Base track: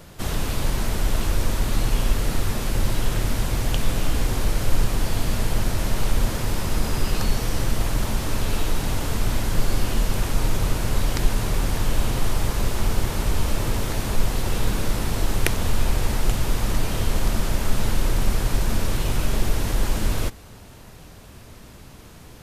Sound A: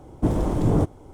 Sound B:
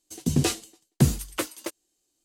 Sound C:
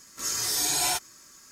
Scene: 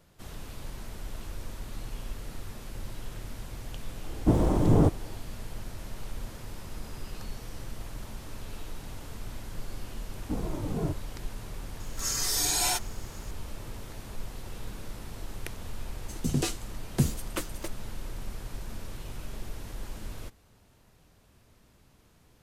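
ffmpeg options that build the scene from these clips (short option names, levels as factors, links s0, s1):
-filter_complex "[1:a]asplit=2[s0][s1];[0:a]volume=0.141[s2];[s1]asplit=2[s3][s4];[s4]adelay=2.3,afreqshift=-2.8[s5];[s3][s5]amix=inputs=2:normalize=1[s6];[s0]atrim=end=1.13,asetpts=PTS-STARTPTS,volume=0.891,afade=t=in:d=0.004:c=hsin,afade=t=out:st=1.126:d=0.004:c=hsin,adelay=4040[s7];[s6]atrim=end=1.13,asetpts=PTS-STARTPTS,volume=0.398,afade=t=in:d=0.004:c=hsin,afade=t=out:st=1.126:d=0.004:c=hsin,adelay=10070[s8];[3:a]atrim=end=1.51,asetpts=PTS-STARTPTS,volume=0.841,afade=t=in:d=0.004:c=hsin,afade=t=out:st=1.506:d=0.004:c=hsin,adelay=11800[s9];[2:a]atrim=end=2.24,asetpts=PTS-STARTPTS,volume=0.531,afade=t=in:d=0.004:c=hsin,afade=t=out:st=2.236:d=0.004:c=hsin,adelay=15980[s10];[s2][s7][s8][s9][s10]amix=inputs=5:normalize=0"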